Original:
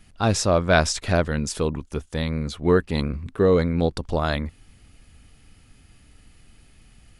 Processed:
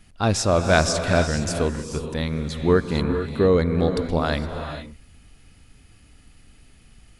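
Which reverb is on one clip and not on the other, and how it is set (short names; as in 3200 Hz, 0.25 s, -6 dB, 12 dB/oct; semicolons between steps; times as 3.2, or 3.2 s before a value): non-linear reverb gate 0.49 s rising, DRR 6.5 dB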